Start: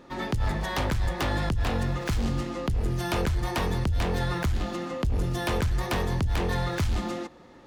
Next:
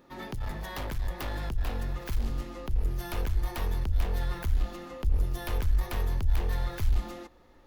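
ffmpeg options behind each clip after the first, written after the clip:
-af "aexciter=amount=4.2:drive=4.2:freq=11k,aeval=exprs='clip(val(0),-1,0.0531)':c=same,asubboost=boost=7.5:cutoff=55,volume=-8dB"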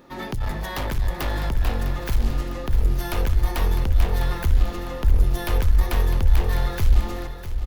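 -af "aecho=1:1:654|1308|1962|2616|3270:0.282|0.132|0.0623|0.0293|0.0138,volume=8dB"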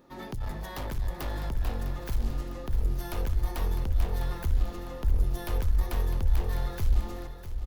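-af "equalizer=f=2.3k:t=o:w=1.7:g=-4,volume=-7.5dB"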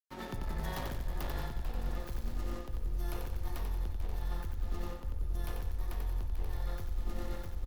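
-af "aecho=1:1:91|182|273|364|455|546|637:0.708|0.361|0.184|0.0939|0.0479|0.0244|0.0125,aeval=exprs='sgn(val(0))*max(abs(val(0))-0.00473,0)':c=same,areverse,acompressor=threshold=-33dB:ratio=6,areverse,volume=1.5dB"

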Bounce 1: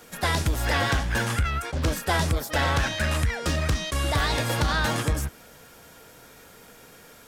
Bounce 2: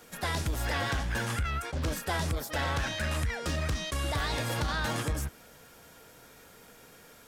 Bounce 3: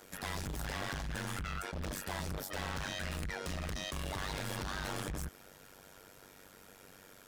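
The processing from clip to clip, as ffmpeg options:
-af "alimiter=limit=-19dB:level=0:latency=1:release=29,volume=-4.5dB"
-af "asoftclip=type=hard:threshold=-34dB,tremolo=f=96:d=0.919,volume=1dB"

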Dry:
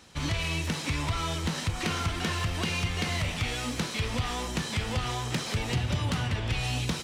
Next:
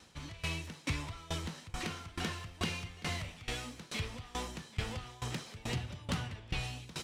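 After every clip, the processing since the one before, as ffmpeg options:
-af "aeval=exprs='val(0)*pow(10,-22*if(lt(mod(2.3*n/s,1),2*abs(2.3)/1000),1-mod(2.3*n/s,1)/(2*abs(2.3)/1000),(mod(2.3*n/s,1)-2*abs(2.3)/1000)/(1-2*abs(2.3)/1000))/20)':c=same,volume=-2.5dB"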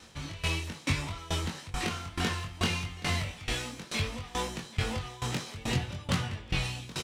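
-filter_complex "[0:a]asplit=2[a][b];[b]adelay=22,volume=-3.5dB[c];[a][c]amix=inputs=2:normalize=0,volume=5dB"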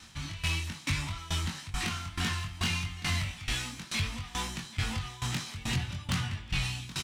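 -af "aeval=exprs='0.178*(cos(1*acos(clip(val(0)/0.178,-1,1)))-cos(1*PI/2))+0.0355*(cos(5*acos(clip(val(0)/0.178,-1,1)))-cos(5*PI/2))':c=same,equalizer=f=480:t=o:w=1.1:g=-14.5,volume=-3.5dB"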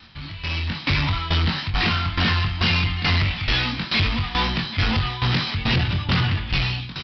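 -af "aresample=11025,asoftclip=type=tanh:threshold=-33.5dB,aresample=44100,dynaudnorm=f=180:g=7:m=12dB,volume=5dB"

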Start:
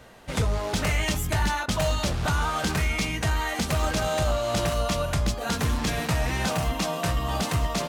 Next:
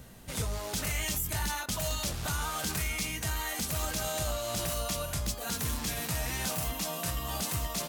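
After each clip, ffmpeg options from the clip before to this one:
-filter_complex "[0:a]aemphasis=mode=production:type=75fm,acrossover=split=260[a][b];[a]acompressor=mode=upward:threshold=-31dB:ratio=2.5[c];[b]alimiter=limit=-15dB:level=0:latency=1:release=23[d];[c][d]amix=inputs=2:normalize=0,volume=-8.5dB"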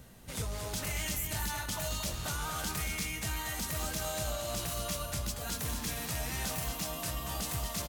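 -af "aecho=1:1:231:0.473,volume=-3.5dB"

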